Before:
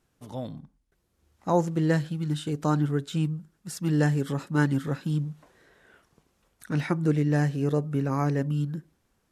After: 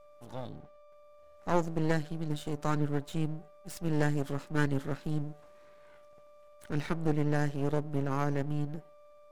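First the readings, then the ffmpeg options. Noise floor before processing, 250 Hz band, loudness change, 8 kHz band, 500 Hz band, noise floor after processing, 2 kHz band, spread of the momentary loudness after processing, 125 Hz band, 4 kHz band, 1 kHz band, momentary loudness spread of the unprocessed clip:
−73 dBFS, −6.5 dB, −6.0 dB, −6.0 dB, −4.5 dB, −56 dBFS, −4.0 dB, 14 LU, −7.0 dB, −5.5 dB, −4.0 dB, 13 LU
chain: -af "aeval=exprs='val(0)+0.00447*sin(2*PI*590*n/s)':channel_layout=same,aeval=exprs='max(val(0),0)':channel_layout=same,volume=-2.5dB"

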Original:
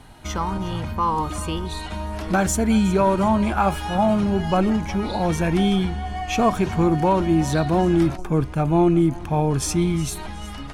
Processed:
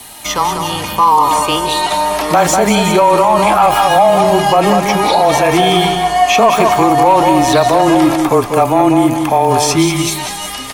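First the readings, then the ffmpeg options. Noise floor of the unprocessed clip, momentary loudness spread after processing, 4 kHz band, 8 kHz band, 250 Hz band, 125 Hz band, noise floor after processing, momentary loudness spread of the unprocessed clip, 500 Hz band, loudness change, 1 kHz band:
−34 dBFS, 6 LU, +16.0 dB, +12.0 dB, +5.5 dB, +2.0 dB, −24 dBFS, 10 LU, +11.5 dB, +10.0 dB, +14.5 dB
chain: -filter_complex "[0:a]aemphasis=mode=production:type=riaa,acrossover=split=4500[link_01][link_02];[link_02]acompressor=threshold=-37dB:ratio=4:attack=1:release=60[link_03];[link_01][link_03]amix=inputs=2:normalize=0,lowshelf=frequency=85:gain=-6,bandreject=frequency=1500:width=6.7,acrossover=split=500|1200[link_04][link_05][link_06];[link_05]dynaudnorm=framelen=120:gausssize=21:maxgain=11.5dB[link_07];[link_04][link_07][link_06]amix=inputs=3:normalize=0,afreqshift=-17,asoftclip=type=tanh:threshold=-5dB,flanger=delay=0.2:depth=8.4:regen=83:speed=0.27:shape=triangular,aecho=1:1:193:0.422,alimiter=level_in=17.5dB:limit=-1dB:release=50:level=0:latency=1,volume=-1dB"

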